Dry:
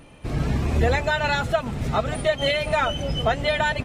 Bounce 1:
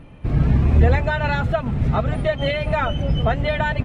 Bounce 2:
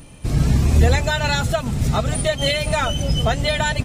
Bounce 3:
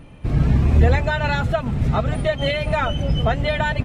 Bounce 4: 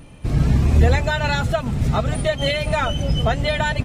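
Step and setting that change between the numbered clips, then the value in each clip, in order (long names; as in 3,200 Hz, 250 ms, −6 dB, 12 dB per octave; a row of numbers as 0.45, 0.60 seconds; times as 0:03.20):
bass and treble, treble: −14, +13, −6, +4 decibels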